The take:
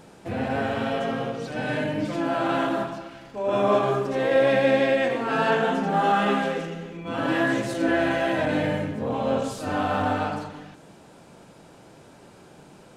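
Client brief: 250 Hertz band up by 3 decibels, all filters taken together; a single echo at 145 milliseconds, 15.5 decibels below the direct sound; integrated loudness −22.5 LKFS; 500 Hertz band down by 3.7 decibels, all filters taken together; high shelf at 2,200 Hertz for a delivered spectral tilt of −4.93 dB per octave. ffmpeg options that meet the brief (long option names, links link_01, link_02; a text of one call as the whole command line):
ffmpeg -i in.wav -af "equalizer=frequency=250:width_type=o:gain=5.5,equalizer=frequency=500:width_type=o:gain=-6.5,highshelf=frequency=2200:gain=8.5,aecho=1:1:145:0.168,volume=1dB" out.wav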